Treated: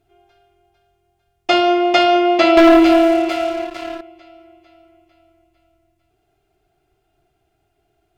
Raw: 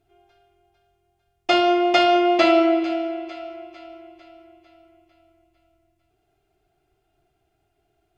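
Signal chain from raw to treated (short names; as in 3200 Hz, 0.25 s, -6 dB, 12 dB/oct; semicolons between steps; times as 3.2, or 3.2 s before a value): 2.57–4.01 sample leveller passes 3; gain +3.5 dB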